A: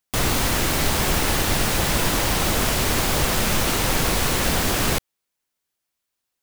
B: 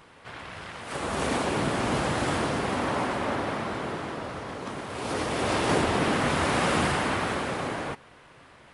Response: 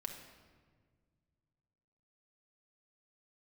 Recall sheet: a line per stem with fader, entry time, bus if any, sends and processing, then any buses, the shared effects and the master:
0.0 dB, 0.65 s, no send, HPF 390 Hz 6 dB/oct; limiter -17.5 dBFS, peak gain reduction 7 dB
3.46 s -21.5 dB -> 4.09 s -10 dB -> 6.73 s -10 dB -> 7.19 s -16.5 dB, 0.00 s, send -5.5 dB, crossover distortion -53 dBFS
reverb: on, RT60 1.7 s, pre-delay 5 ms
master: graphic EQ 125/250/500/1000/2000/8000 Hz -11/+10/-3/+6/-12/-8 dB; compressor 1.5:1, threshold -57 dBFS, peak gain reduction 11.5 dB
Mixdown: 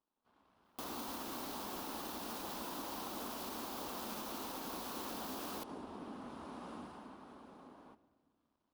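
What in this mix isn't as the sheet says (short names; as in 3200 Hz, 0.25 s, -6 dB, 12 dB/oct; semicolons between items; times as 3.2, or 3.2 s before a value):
stem A 0.0 dB -> -6.5 dB; stem B -21.5 dB -> -32.0 dB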